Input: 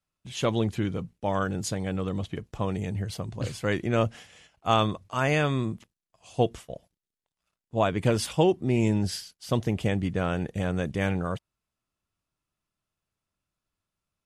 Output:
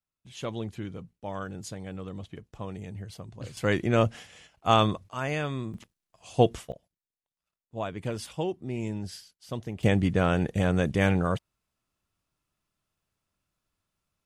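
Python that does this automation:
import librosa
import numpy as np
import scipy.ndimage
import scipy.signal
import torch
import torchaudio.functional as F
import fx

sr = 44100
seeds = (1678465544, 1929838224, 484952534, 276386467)

y = fx.gain(x, sr, db=fx.steps((0.0, -8.5), (3.57, 1.5), (5.09, -6.0), (5.74, 3.0), (6.72, -9.0), (9.83, 3.5)))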